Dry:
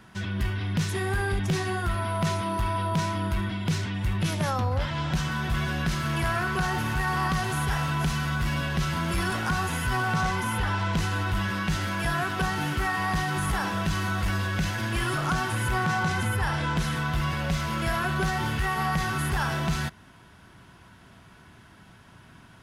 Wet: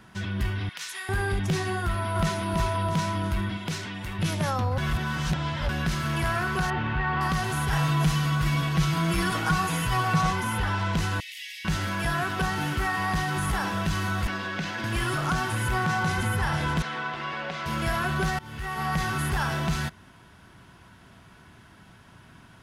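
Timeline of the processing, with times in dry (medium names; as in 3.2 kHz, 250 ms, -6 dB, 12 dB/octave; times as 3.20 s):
0.69–1.09 s: high-pass 1.4 kHz
1.82–2.43 s: echo throw 330 ms, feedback 45%, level -4 dB
3.57–4.19 s: peaking EQ 64 Hz -12 dB 2.7 oct
4.78–5.69 s: reverse
6.70–7.21 s: low-pass 3.3 kHz 24 dB/octave
7.72–10.33 s: comb 6.3 ms, depth 77%
11.20–11.65 s: steep high-pass 1.9 kHz 96 dB/octave
14.27–14.84 s: three-band isolator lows -22 dB, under 160 Hz, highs -15 dB, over 5.9 kHz
15.56–16.25 s: echo throw 480 ms, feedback 65%, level -11 dB
16.82–17.66 s: band-pass 340–3600 Hz
18.39–18.98 s: fade in, from -22 dB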